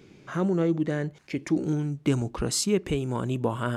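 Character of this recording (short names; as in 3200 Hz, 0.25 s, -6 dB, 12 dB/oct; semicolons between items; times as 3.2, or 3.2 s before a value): noise floor -53 dBFS; spectral tilt -5.5 dB/oct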